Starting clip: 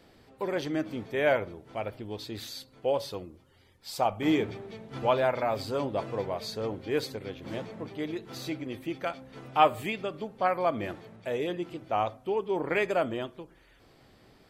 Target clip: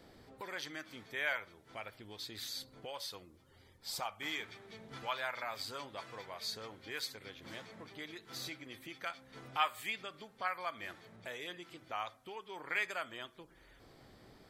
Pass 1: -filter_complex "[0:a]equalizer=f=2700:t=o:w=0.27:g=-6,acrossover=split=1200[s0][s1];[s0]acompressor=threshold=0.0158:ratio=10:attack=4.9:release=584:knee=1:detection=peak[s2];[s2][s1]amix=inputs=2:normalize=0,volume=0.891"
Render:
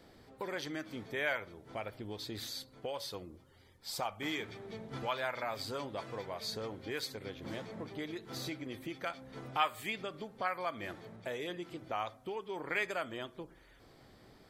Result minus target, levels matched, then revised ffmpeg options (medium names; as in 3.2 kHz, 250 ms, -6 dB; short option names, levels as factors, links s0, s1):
compression: peak gain reduction -9.5 dB
-filter_complex "[0:a]equalizer=f=2700:t=o:w=0.27:g=-6,acrossover=split=1200[s0][s1];[s0]acompressor=threshold=0.00473:ratio=10:attack=4.9:release=584:knee=1:detection=peak[s2];[s2][s1]amix=inputs=2:normalize=0,volume=0.891"